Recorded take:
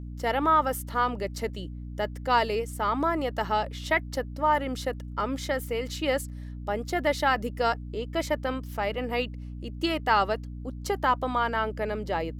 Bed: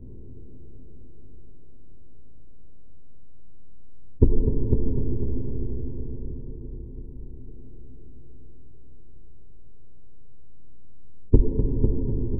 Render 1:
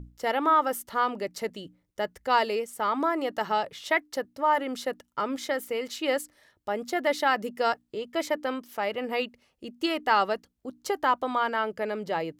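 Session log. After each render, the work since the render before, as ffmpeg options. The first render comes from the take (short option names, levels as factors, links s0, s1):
-af "bandreject=f=60:t=h:w=6,bandreject=f=120:t=h:w=6,bandreject=f=180:t=h:w=6,bandreject=f=240:t=h:w=6,bandreject=f=300:t=h:w=6"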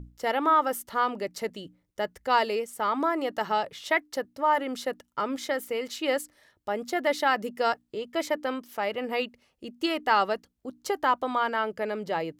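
-af anull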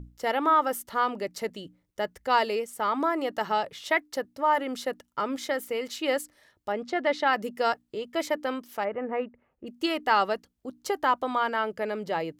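-filter_complex "[0:a]asettb=1/sr,asplit=3[s0][s1][s2];[s0]atrim=end=6.724[s3];[s1]atrim=start=6.72:end=7.33,asetpts=PTS-STARTPTS,afade=t=in:d=0.004:c=qsin,afade=t=out:st=0.606:d=0.004:c=qsin,lowpass=4500[s4];[s2]atrim=start=7.326[s5];[s3][s4]acrossfade=d=0.004:c1=hsin:c2=qsin[s6];[s6][s5]acrossfade=d=0.004:c1=qsin:c2=hsin,asplit=3[s7][s8][s9];[s7]afade=t=out:st=8.83:d=0.02[s10];[s8]lowpass=f=1800:w=0.5412,lowpass=f=1800:w=1.3066,afade=t=in:st=8.83:d=0.02,afade=t=out:st=9.66:d=0.02[s11];[s9]afade=t=in:st=9.66:d=0.02[s12];[s10][s11][s12]amix=inputs=3:normalize=0"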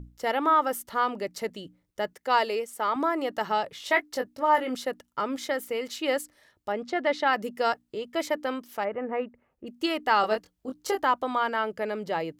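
-filter_complex "[0:a]asettb=1/sr,asplit=3[s0][s1][s2];[s0]atrim=end=2.134[s3];[s1]atrim=start=2.13:end=2.96,asetpts=PTS-STARTPTS,afade=t=in:d=0.004:c=qsin,afade=t=out:st=0.826:d=0.004:c=qsin,highpass=240[s4];[s2]atrim=start=2.956[s5];[s3][s4]acrossfade=d=0.004:c1=hsin:c2=qsin[s6];[s6][s5]acrossfade=d=0.004:c1=qsin:c2=hsin,asettb=1/sr,asplit=3[s7][s8][s9];[s7]atrim=end=3.774[s10];[s8]atrim=start=3.77:end=4.75,asetpts=PTS-STARTPTS,afade=t=in:d=0.004:c=qsin,afade=t=out:st=0.976:d=0.004:c=qsin,asplit=2[s11][s12];[s12]adelay=20,volume=0.531[s13];[s11][s13]amix=inputs=2:normalize=0,atrim=end_sample=43218[s14];[s9]atrim=start=4.746[s15];[s10][s14]acrossfade=d=0.004:c1=hsin:c2=qsin[s16];[s16][s15]acrossfade=d=0.004:c1=qsin:c2=hsin,asettb=1/sr,asplit=3[s17][s18][s19];[s17]atrim=end=10.214[s20];[s18]atrim=start=10.21:end=11.02,asetpts=PTS-STARTPTS,afade=t=in:d=0.004:c=qsin,afade=t=out:st=0.806:d=0.004:c=qsin,asplit=2[s21][s22];[s22]adelay=23,volume=0.708[s23];[s21][s23]amix=inputs=2:normalize=0,atrim=end_sample=35721[s24];[s19]atrim=start=11.016[s25];[s20][s24]acrossfade=d=0.004:c1=hsin:c2=qsin[s26];[s26][s25]acrossfade=d=0.004:c1=qsin:c2=hsin"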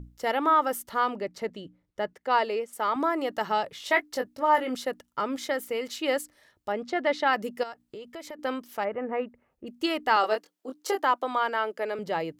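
-filter_complex "[0:a]asettb=1/sr,asplit=3[s0][s1][s2];[s0]atrim=end=1.154[s3];[s1]atrim=start=1.15:end=2.73,asetpts=PTS-STARTPTS,afade=t=in:d=0.004:c=qsin,afade=t=out:st=1.576:d=0.004:c=qsin,lowpass=f=2700:p=1[s4];[s2]atrim=start=2.726[s5];[s3][s4]acrossfade=d=0.004:c1=hsin:c2=qsin[s6];[s6][s5]acrossfade=d=0.004:c1=qsin:c2=hsin,asettb=1/sr,asplit=3[s7][s8][s9];[s7]atrim=end=7.634[s10];[s8]atrim=start=7.63:end=8.39,asetpts=PTS-STARTPTS,afade=t=in:d=0.004:c=qsin,afade=t=out:st=0.756:d=0.004:c=qsin,acompressor=threshold=0.0126:ratio=4:attack=3.2:release=140:knee=1:detection=peak[s11];[s9]atrim=start=8.386[s12];[s10][s11]acrossfade=d=0.004:c1=hsin:c2=qsin[s13];[s13][s12]acrossfade=d=0.004:c1=qsin:c2=hsin,asettb=1/sr,asplit=3[s14][s15][s16];[s14]atrim=end=10.164[s17];[s15]atrim=start=10.16:end=11.99,asetpts=PTS-STARTPTS,afade=t=in:d=0.004:c=qsin,afade=t=out:st=1.826:d=0.004:c=qsin,highpass=f=270:w=0.5412,highpass=f=270:w=1.3066[s18];[s16]atrim=start=11.986[s19];[s17][s18]acrossfade=d=0.004:c1=hsin:c2=qsin[s20];[s20][s19]acrossfade=d=0.004:c1=qsin:c2=hsin"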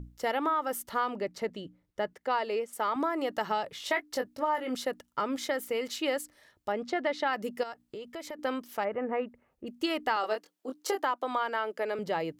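-af "acompressor=threshold=0.0501:ratio=4"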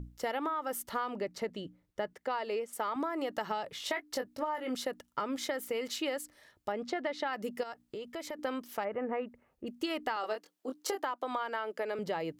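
-af "acompressor=threshold=0.0282:ratio=4"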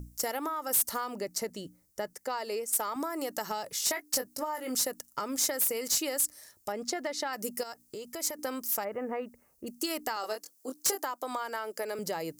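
-af "aexciter=amount=10.6:drive=2.2:freq=4900,volume=13.3,asoftclip=hard,volume=0.075"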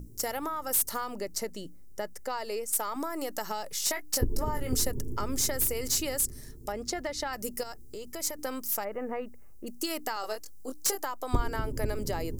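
-filter_complex "[1:a]volume=0.282[s0];[0:a][s0]amix=inputs=2:normalize=0"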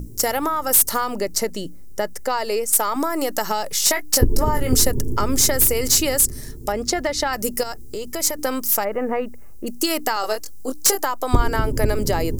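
-af "volume=3.76,alimiter=limit=0.794:level=0:latency=1"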